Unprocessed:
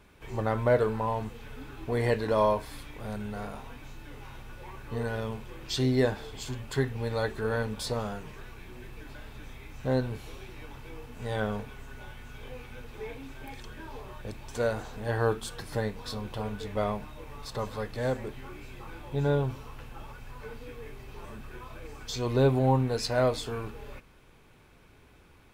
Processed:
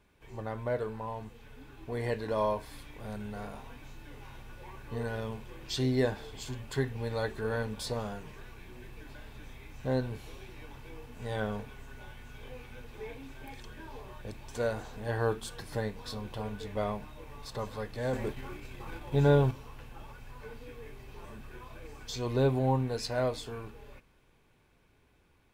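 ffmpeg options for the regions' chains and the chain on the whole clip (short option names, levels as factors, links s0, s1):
-filter_complex "[0:a]asettb=1/sr,asplit=3[s0][s1][s2];[s0]atrim=end=18.134[s3];[s1]atrim=start=18.13:end=19.51,asetpts=PTS-STARTPTS,afade=t=in:d=0.004:c=qsin,afade=t=out:st=1.376:d=0.004:c=qsin,agate=range=0.0224:threshold=0.01:ratio=3:release=100:detection=peak,acontrast=69[s4];[s2]atrim=start=19.506[s5];[s3][s4]acrossfade=d=0.004:c1=hsin:c2=qsin[s6];[s6][s5]acrossfade=d=0.004:c1=qsin:c2=hsin,bandreject=f=1300:w=15,dynaudnorm=f=150:g=31:m=2,volume=0.355"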